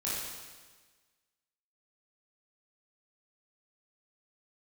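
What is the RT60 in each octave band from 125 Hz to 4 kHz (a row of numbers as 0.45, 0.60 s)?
1.4, 1.4, 1.4, 1.4, 1.4, 1.4 s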